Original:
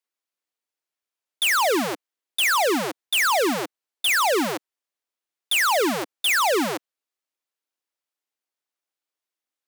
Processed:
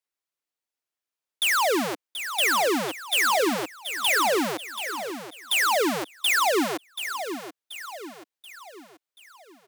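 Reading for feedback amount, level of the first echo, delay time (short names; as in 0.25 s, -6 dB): 46%, -10.0 dB, 0.732 s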